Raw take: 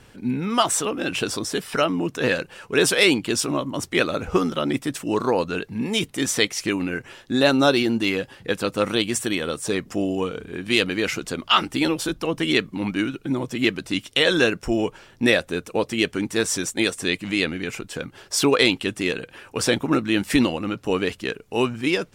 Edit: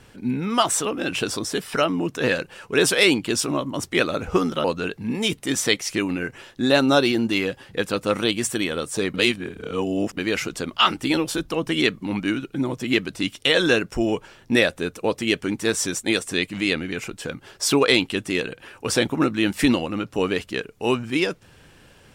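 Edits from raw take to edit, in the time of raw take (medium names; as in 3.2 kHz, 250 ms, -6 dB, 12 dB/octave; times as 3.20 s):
4.64–5.35 s: delete
9.85–10.88 s: reverse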